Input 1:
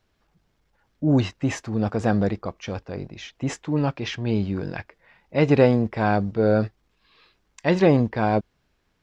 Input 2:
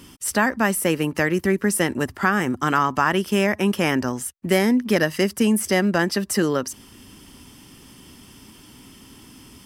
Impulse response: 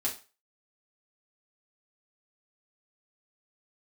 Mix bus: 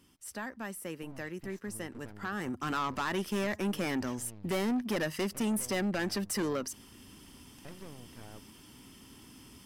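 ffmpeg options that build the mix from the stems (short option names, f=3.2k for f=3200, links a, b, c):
-filter_complex "[0:a]aeval=exprs='max(val(0),0)':c=same,acompressor=threshold=-32dB:ratio=4,volume=-14dB[a];[1:a]volume=-7.5dB,afade=t=in:st=2.16:d=0.65:silence=0.266073[b];[a][b]amix=inputs=2:normalize=0,asoftclip=type=tanh:threshold=-26.5dB"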